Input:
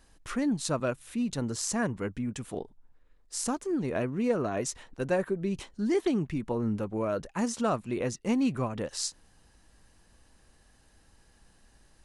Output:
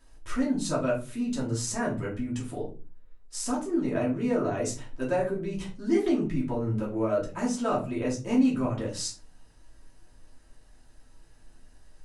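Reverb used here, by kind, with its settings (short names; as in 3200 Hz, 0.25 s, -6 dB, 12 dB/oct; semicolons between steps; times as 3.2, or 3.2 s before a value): shoebox room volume 170 m³, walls furnished, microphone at 2.8 m; gain -5.5 dB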